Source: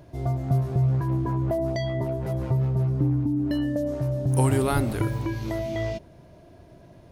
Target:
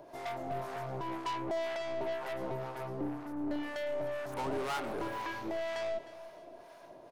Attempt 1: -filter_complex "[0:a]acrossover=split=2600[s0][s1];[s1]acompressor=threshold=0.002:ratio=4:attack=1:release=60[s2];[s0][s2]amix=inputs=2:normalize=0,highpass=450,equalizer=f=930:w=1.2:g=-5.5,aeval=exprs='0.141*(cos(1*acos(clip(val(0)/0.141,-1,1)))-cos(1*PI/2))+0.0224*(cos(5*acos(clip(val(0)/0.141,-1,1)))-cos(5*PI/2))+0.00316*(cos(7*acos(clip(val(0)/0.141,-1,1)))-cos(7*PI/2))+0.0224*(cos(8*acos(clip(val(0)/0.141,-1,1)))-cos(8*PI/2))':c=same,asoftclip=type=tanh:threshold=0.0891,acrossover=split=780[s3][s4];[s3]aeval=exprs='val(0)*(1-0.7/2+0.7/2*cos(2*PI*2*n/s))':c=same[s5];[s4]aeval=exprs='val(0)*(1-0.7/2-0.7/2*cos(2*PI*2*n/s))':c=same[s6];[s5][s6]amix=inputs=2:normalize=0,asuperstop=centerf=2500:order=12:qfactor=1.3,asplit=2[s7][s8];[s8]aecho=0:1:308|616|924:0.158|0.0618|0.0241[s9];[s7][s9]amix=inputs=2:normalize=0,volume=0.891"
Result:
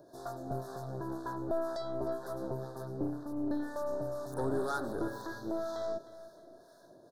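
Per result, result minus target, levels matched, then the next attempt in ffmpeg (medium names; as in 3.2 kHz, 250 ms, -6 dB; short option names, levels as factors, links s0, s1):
saturation: distortion -9 dB; 2 kHz band -5.5 dB; 1 kHz band -3.0 dB
-filter_complex "[0:a]acrossover=split=2600[s0][s1];[s1]acompressor=threshold=0.002:ratio=4:attack=1:release=60[s2];[s0][s2]amix=inputs=2:normalize=0,highpass=450,equalizer=f=930:w=1.2:g=-5.5,aeval=exprs='0.141*(cos(1*acos(clip(val(0)/0.141,-1,1)))-cos(1*PI/2))+0.0224*(cos(5*acos(clip(val(0)/0.141,-1,1)))-cos(5*PI/2))+0.00316*(cos(7*acos(clip(val(0)/0.141,-1,1)))-cos(7*PI/2))+0.0224*(cos(8*acos(clip(val(0)/0.141,-1,1)))-cos(8*PI/2))':c=same,asoftclip=type=tanh:threshold=0.0422,acrossover=split=780[s3][s4];[s3]aeval=exprs='val(0)*(1-0.7/2+0.7/2*cos(2*PI*2*n/s))':c=same[s5];[s4]aeval=exprs='val(0)*(1-0.7/2-0.7/2*cos(2*PI*2*n/s))':c=same[s6];[s5][s6]amix=inputs=2:normalize=0,asuperstop=centerf=2500:order=12:qfactor=1.3,asplit=2[s7][s8];[s8]aecho=0:1:308|616|924:0.158|0.0618|0.0241[s9];[s7][s9]amix=inputs=2:normalize=0,volume=0.891"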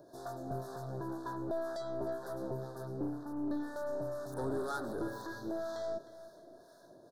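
2 kHz band -4.5 dB; 1 kHz band -3.5 dB
-filter_complex "[0:a]acrossover=split=2600[s0][s1];[s1]acompressor=threshold=0.002:ratio=4:attack=1:release=60[s2];[s0][s2]amix=inputs=2:normalize=0,highpass=450,equalizer=f=930:w=1.2:g=-5.5,aeval=exprs='0.141*(cos(1*acos(clip(val(0)/0.141,-1,1)))-cos(1*PI/2))+0.0224*(cos(5*acos(clip(val(0)/0.141,-1,1)))-cos(5*PI/2))+0.00316*(cos(7*acos(clip(val(0)/0.141,-1,1)))-cos(7*PI/2))+0.0224*(cos(8*acos(clip(val(0)/0.141,-1,1)))-cos(8*PI/2))':c=same,asoftclip=type=tanh:threshold=0.0422,acrossover=split=780[s3][s4];[s3]aeval=exprs='val(0)*(1-0.7/2+0.7/2*cos(2*PI*2*n/s))':c=same[s5];[s4]aeval=exprs='val(0)*(1-0.7/2-0.7/2*cos(2*PI*2*n/s))':c=same[s6];[s5][s6]amix=inputs=2:normalize=0,asplit=2[s7][s8];[s8]aecho=0:1:308|616|924:0.158|0.0618|0.0241[s9];[s7][s9]amix=inputs=2:normalize=0,volume=0.891"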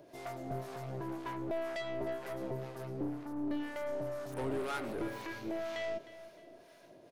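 1 kHz band -3.5 dB
-filter_complex "[0:a]acrossover=split=2600[s0][s1];[s1]acompressor=threshold=0.002:ratio=4:attack=1:release=60[s2];[s0][s2]amix=inputs=2:normalize=0,highpass=450,equalizer=f=930:w=1.2:g=6,aeval=exprs='0.141*(cos(1*acos(clip(val(0)/0.141,-1,1)))-cos(1*PI/2))+0.0224*(cos(5*acos(clip(val(0)/0.141,-1,1)))-cos(5*PI/2))+0.00316*(cos(7*acos(clip(val(0)/0.141,-1,1)))-cos(7*PI/2))+0.0224*(cos(8*acos(clip(val(0)/0.141,-1,1)))-cos(8*PI/2))':c=same,asoftclip=type=tanh:threshold=0.0422,acrossover=split=780[s3][s4];[s3]aeval=exprs='val(0)*(1-0.7/2+0.7/2*cos(2*PI*2*n/s))':c=same[s5];[s4]aeval=exprs='val(0)*(1-0.7/2-0.7/2*cos(2*PI*2*n/s))':c=same[s6];[s5][s6]amix=inputs=2:normalize=0,asplit=2[s7][s8];[s8]aecho=0:1:308|616|924:0.158|0.0618|0.0241[s9];[s7][s9]amix=inputs=2:normalize=0,volume=0.891"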